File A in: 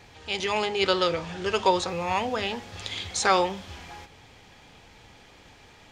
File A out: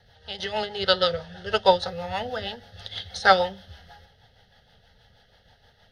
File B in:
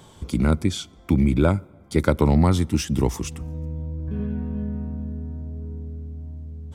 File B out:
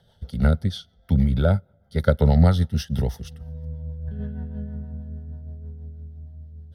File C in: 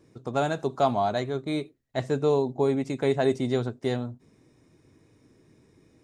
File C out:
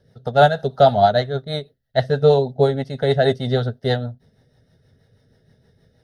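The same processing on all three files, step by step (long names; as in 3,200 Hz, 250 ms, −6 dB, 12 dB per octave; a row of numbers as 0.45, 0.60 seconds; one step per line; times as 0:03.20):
rotating-speaker cabinet horn 6.3 Hz
phaser with its sweep stopped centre 1,600 Hz, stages 8
expander for the loud parts 1.5 to 1, over −44 dBFS
normalise the peak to −2 dBFS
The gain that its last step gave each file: +10.0, +6.5, +17.0 decibels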